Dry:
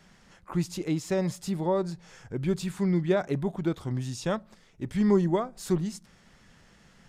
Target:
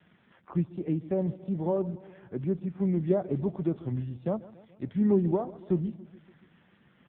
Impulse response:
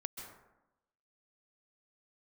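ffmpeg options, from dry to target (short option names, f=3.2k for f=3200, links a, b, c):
-filter_complex "[0:a]acrossover=split=170|940[a][b][c];[c]acompressor=threshold=-51dB:ratio=8[d];[a][b][d]amix=inputs=3:normalize=0,asplit=3[e][f][g];[e]afade=t=out:st=1.7:d=0.02[h];[f]highpass=120,lowpass=2.6k,afade=t=in:st=1.7:d=0.02,afade=t=out:st=2.98:d=0.02[i];[g]afade=t=in:st=2.98:d=0.02[j];[h][i][j]amix=inputs=3:normalize=0,aecho=1:1:142|284|426|568|710:0.126|0.0718|0.0409|0.0233|0.0133" -ar 8000 -c:a libopencore_amrnb -b:a 5900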